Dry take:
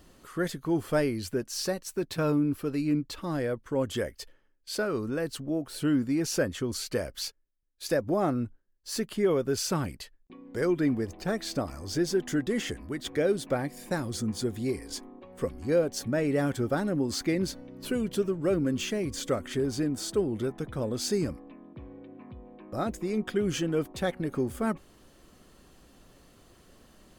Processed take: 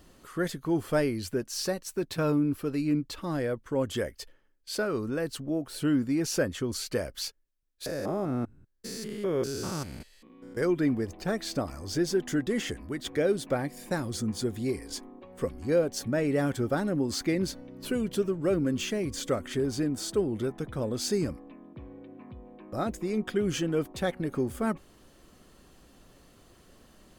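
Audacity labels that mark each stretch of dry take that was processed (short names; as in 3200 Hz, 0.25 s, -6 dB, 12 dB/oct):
7.860000	10.570000	stepped spectrum every 0.2 s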